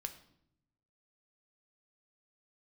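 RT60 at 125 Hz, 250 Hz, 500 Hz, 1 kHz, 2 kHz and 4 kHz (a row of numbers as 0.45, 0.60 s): 1.3, 1.1, 0.85, 0.65, 0.60, 0.55 s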